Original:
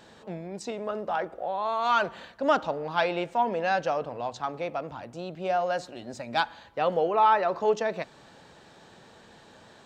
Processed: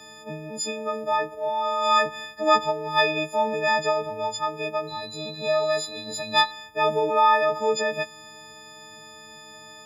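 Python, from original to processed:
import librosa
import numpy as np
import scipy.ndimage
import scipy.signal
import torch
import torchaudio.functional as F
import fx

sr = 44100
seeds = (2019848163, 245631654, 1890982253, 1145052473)

y = fx.freq_snap(x, sr, grid_st=6)
y = fx.dmg_tone(y, sr, hz=4000.0, level_db=-39.0, at=(4.87, 6.5), fade=0.02)
y = y * 10.0 ** (1.0 / 20.0)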